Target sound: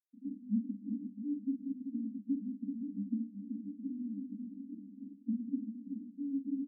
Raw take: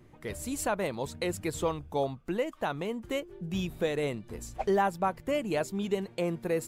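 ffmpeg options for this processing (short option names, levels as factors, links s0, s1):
-af "agate=range=0.0224:threshold=0.00316:ratio=3:detection=peak,acompressor=threshold=0.00398:ratio=3,acrusher=bits=7:mix=0:aa=0.000001,asetrate=36028,aresample=44100,atempo=1.22405,asuperpass=centerf=240:order=20:qfactor=2.5,aecho=1:1:44|323|383|666:0.447|0.133|0.422|0.251,volume=5.31"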